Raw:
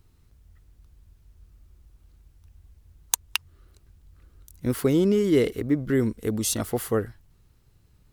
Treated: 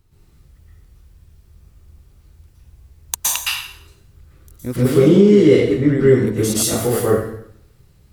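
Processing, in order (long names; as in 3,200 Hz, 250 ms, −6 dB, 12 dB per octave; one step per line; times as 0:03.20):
0:04.76–0:06.27: low-pass filter 7,000 Hz 12 dB per octave
dense smooth reverb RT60 0.69 s, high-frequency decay 0.9×, pre-delay 105 ms, DRR −9 dB
boost into a limiter +0.5 dB
level −1 dB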